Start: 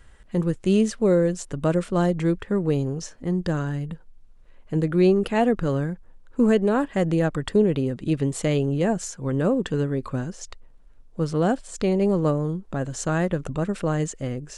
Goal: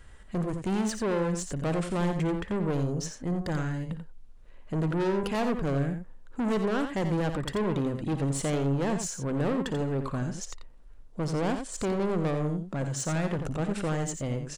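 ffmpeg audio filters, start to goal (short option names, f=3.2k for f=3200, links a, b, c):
-filter_complex "[0:a]asettb=1/sr,asplit=3[a][b][c];[a]atrim=end=12.644[d];[b]atrim=start=12.64:end=13.39,asetpts=PTS-STARTPTS,afade=t=in:d=0.004:c=qsin,afade=t=out:st=0.746:d=0.004:c=qsin,highpass=f=100:w=0.5412,highpass=f=100:w=1.3066[e];[c]atrim=start=13.386[f];[d][e]acrossfade=d=0.004:c1=hsin:c2=qsin[g];[g][f]acrossfade=d=0.004:c1=qsin:c2=hsin,asoftclip=type=tanh:threshold=-25.5dB,aecho=1:1:57|58|87:0.168|0.119|0.398"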